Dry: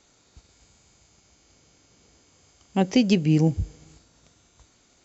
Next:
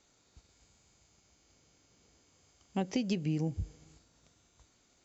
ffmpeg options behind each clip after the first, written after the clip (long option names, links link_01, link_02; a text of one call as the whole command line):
ffmpeg -i in.wav -af "acompressor=threshold=-20dB:ratio=6,volume=-8dB" out.wav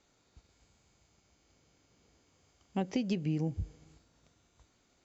ffmpeg -i in.wav -af "highshelf=frequency=5800:gain=-9.5" out.wav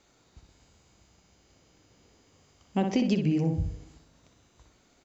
ffmpeg -i in.wav -filter_complex "[0:a]asplit=2[link_01][link_02];[link_02]adelay=61,lowpass=frequency=2600:poles=1,volume=-5dB,asplit=2[link_03][link_04];[link_04]adelay=61,lowpass=frequency=2600:poles=1,volume=0.41,asplit=2[link_05][link_06];[link_06]adelay=61,lowpass=frequency=2600:poles=1,volume=0.41,asplit=2[link_07][link_08];[link_08]adelay=61,lowpass=frequency=2600:poles=1,volume=0.41,asplit=2[link_09][link_10];[link_10]adelay=61,lowpass=frequency=2600:poles=1,volume=0.41[link_11];[link_01][link_03][link_05][link_07][link_09][link_11]amix=inputs=6:normalize=0,volume=6dB" out.wav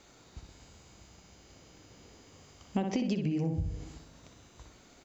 ffmpeg -i in.wav -af "acompressor=threshold=-34dB:ratio=8,volume=6dB" out.wav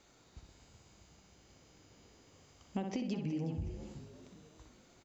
ffmpeg -i in.wav -filter_complex "[0:a]asplit=5[link_01][link_02][link_03][link_04][link_05];[link_02]adelay=368,afreqshift=51,volume=-13dB[link_06];[link_03]adelay=736,afreqshift=102,volume=-20.7dB[link_07];[link_04]adelay=1104,afreqshift=153,volume=-28.5dB[link_08];[link_05]adelay=1472,afreqshift=204,volume=-36.2dB[link_09];[link_01][link_06][link_07][link_08][link_09]amix=inputs=5:normalize=0,volume=-6.5dB" out.wav